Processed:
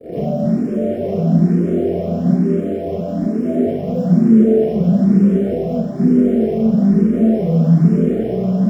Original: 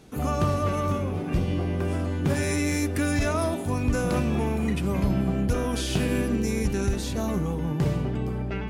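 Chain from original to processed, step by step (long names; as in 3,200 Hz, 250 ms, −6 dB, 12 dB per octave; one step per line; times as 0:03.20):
brickwall limiter −26.5 dBFS, peak gain reduction 11.5 dB
flanger 0.24 Hz, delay 5.4 ms, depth 8.2 ms, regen −59%
fuzz pedal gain 55 dB, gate −53 dBFS
Chebyshev low-pass with heavy ripple 710 Hz, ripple 6 dB
floating-point word with a short mantissa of 2 bits
convolution reverb RT60 0.15 s, pre-delay 31 ms, DRR −6.5 dB
frequency shifter mixed with the dry sound +1.1 Hz
level −17.5 dB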